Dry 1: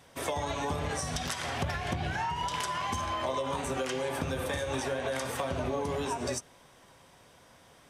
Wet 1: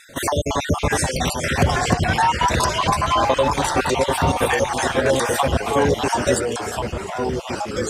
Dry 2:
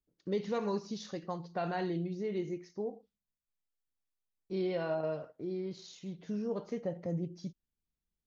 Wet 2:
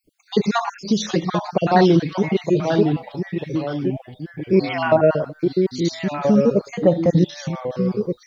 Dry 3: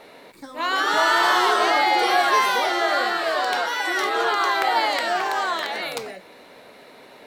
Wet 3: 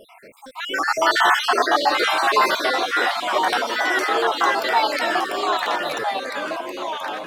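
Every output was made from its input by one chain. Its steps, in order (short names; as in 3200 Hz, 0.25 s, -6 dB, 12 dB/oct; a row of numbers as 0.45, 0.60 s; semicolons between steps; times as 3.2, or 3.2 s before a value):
random spectral dropouts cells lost 50%; echoes that change speed 0.726 s, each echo -2 st, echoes 3, each echo -6 dB; match loudness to -20 LUFS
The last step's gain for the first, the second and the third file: +16.0, +21.0, +3.5 dB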